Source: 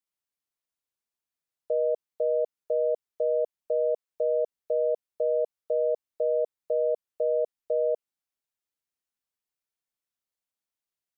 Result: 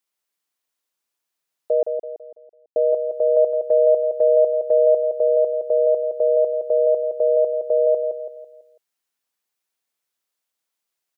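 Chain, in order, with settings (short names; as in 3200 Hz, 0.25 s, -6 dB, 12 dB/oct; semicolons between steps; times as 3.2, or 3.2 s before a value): HPF 300 Hz 6 dB/oct; 1.83–2.76 mute; 3.36–5.08 dynamic EQ 680 Hz, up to +3 dB, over -34 dBFS, Q 1.6; feedback echo 0.166 s, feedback 42%, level -6.5 dB; gain +8.5 dB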